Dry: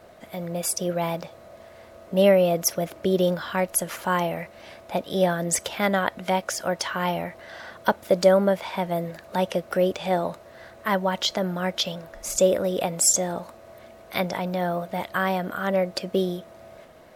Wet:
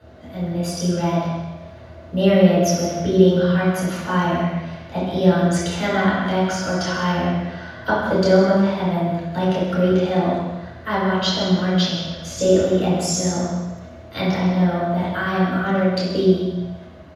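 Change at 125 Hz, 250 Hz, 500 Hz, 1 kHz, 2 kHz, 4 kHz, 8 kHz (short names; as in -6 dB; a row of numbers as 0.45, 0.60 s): +11.0, +10.0, +3.5, +3.5, +4.5, +4.0, -3.5 dB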